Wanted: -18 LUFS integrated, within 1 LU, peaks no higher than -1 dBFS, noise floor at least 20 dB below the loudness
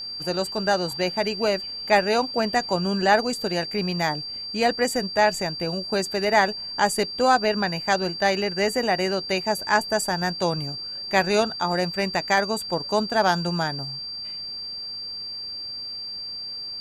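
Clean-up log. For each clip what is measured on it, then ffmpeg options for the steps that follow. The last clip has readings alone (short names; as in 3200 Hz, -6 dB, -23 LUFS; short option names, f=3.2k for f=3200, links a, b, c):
steady tone 4700 Hz; tone level -31 dBFS; loudness -24.0 LUFS; peak -5.0 dBFS; loudness target -18.0 LUFS
-> -af "bandreject=f=4.7k:w=30"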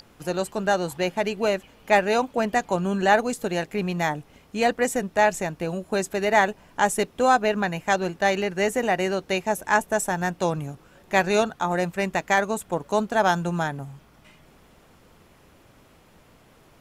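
steady tone none; loudness -24.0 LUFS; peak -5.0 dBFS; loudness target -18.0 LUFS
-> -af "volume=6dB,alimiter=limit=-1dB:level=0:latency=1"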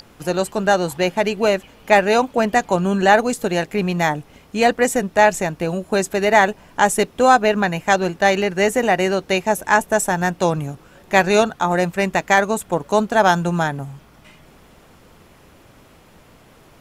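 loudness -18.0 LUFS; peak -1.0 dBFS; noise floor -49 dBFS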